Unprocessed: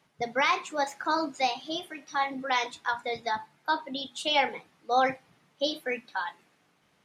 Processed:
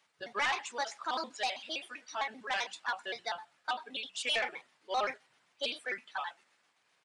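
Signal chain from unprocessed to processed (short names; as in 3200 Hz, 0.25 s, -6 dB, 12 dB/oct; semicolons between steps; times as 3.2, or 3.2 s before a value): trilling pitch shifter -4 st, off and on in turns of 65 ms; HPF 1400 Hz 6 dB/oct; soft clip -23.5 dBFS, distortion -16 dB; downsampling 22050 Hz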